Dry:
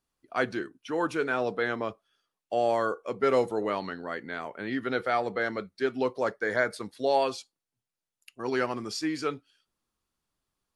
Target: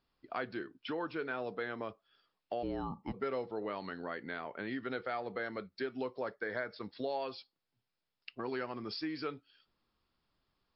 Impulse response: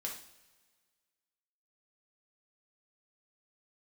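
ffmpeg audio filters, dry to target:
-filter_complex "[0:a]acompressor=threshold=-44dB:ratio=3,asplit=3[link_01][link_02][link_03];[link_01]afade=type=out:start_time=2.62:duration=0.02[link_04];[link_02]afreqshift=-270,afade=type=in:start_time=2.62:duration=0.02,afade=type=out:start_time=3.12:duration=0.02[link_05];[link_03]afade=type=in:start_time=3.12:duration=0.02[link_06];[link_04][link_05][link_06]amix=inputs=3:normalize=0,volume=4.5dB" -ar 12000 -c:a libmp3lame -b:a 56k

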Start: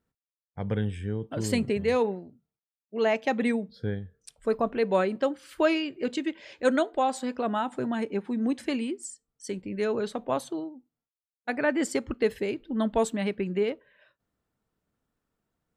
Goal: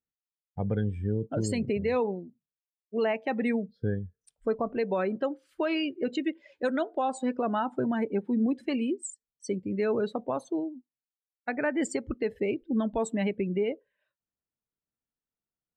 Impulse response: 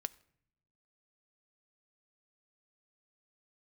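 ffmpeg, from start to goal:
-af "afftdn=noise_reduction=21:noise_floor=-37,alimiter=limit=-22.5dB:level=0:latency=1:release=219,volume=3dB"

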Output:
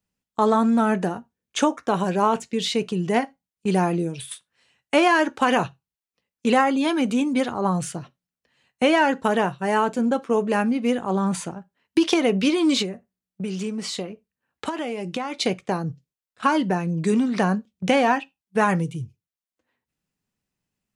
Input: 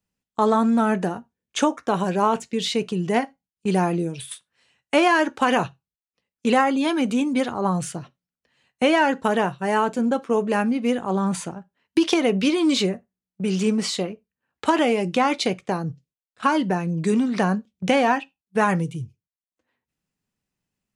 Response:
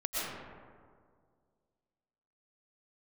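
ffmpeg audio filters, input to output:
-filter_complex "[0:a]asettb=1/sr,asplit=3[link_01][link_02][link_03];[link_01]atrim=end=12.824[link_04];[link_02]atrim=start=12.82:end=15.4,asetpts=PTS-STARTPTS,afade=type=in:duration=0.004:curve=qsin,afade=type=out:start_time=2.576:duration=0.004:curve=qsin,acompressor=threshold=-26dB:ratio=5[link_05];[link_03]atrim=start=15.396[link_06];[link_04][link_05]acrossfade=duration=0.004:curve1=hsin:curve2=qsin[link_07];[link_07][link_06]acrossfade=duration=0.004:curve1=qsin:curve2=hsin"

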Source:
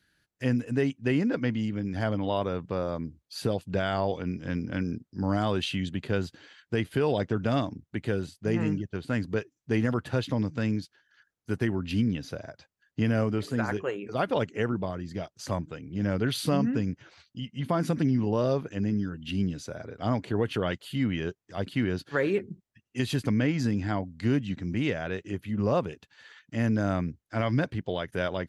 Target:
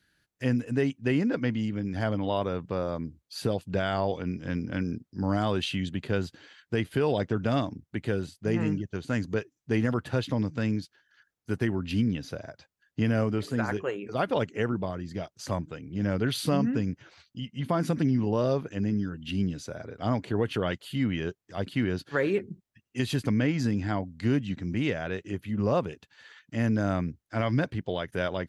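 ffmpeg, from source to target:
ffmpeg -i in.wav -filter_complex "[0:a]asettb=1/sr,asplit=3[link_01][link_02][link_03];[link_01]atrim=end=8.874[link_04];[link_02]atrim=start=8.87:end=9.34,asetpts=PTS-STARTPTS,afade=type=in:duration=0.004:curve=qsin,afade=type=out:start_time=0.466:duration=0.004:curve=qsin,equalizer=frequency=6400:width=3.5:gain=9[link_05];[link_03]atrim=start=9.336[link_06];[link_04][link_05]acrossfade=duration=0.004:curve1=hsin:curve2=qsin[link_07];[link_07][link_06]acrossfade=duration=0.004:curve1=qsin:curve2=hsin" out.wav

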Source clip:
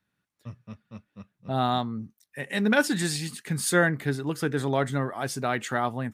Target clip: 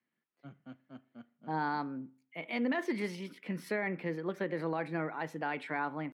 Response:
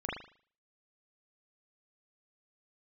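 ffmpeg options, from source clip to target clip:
-filter_complex "[0:a]asetrate=52444,aresample=44100,atempo=0.840896,acrossover=split=160 3300:gain=0.0794 1 0.0708[link_01][link_02][link_03];[link_01][link_02][link_03]amix=inputs=3:normalize=0,alimiter=limit=-18.5dB:level=0:latency=1:release=46,asplit=2[link_04][link_05];[1:a]atrim=start_sample=2205[link_06];[link_05][link_06]afir=irnorm=-1:irlink=0,volume=-21.5dB[link_07];[link_04][link_07]amix=inputs=2:normalize=0,volume=-6dB"

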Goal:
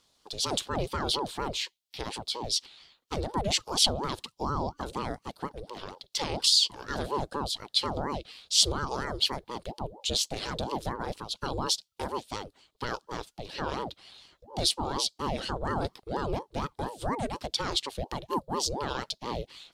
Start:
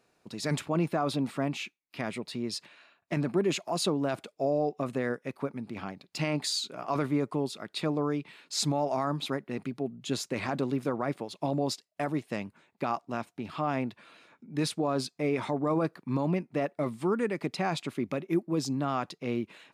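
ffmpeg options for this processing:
ffmpeg -i in.wav -af "highshelf=frequency=2800:width_type=q:width=3:gain=8.5,aeval=exprs='val(0)*sin(2*PI*460*n/s+460*0.6/4.2*sin(2*PI*4.2*n/s))':channel_layout=same" out.wav

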